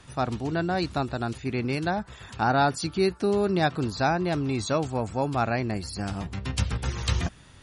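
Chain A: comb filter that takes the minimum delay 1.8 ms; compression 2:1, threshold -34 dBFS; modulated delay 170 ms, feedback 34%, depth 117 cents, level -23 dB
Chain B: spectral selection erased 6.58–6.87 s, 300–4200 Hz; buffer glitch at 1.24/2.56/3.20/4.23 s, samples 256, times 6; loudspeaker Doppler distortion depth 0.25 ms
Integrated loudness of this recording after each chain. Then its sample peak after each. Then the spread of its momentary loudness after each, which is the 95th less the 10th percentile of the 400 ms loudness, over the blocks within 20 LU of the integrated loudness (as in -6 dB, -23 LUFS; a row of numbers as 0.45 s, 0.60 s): -34.5 LUFS, -27.5 LUFS; -19.5 dBFS, -10.5 dBFS; 4 LU, 8 LU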